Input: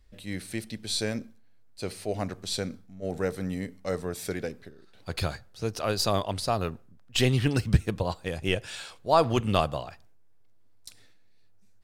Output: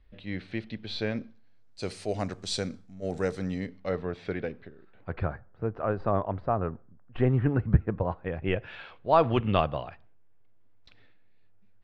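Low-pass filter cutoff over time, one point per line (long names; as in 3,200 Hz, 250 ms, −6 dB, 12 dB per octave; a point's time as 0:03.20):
low-pass filter 24 dB per octave
0:01.08 3,500 Hz
0:01.89 8,300 Hz
0:03.27 8,300 Hz
0:04.00 3,200 Hz
0:04.65 3,200 Hz
0:05.34 1,600 Hz
0:07.81 1,600 Hz
0:09.09 3,100 Hz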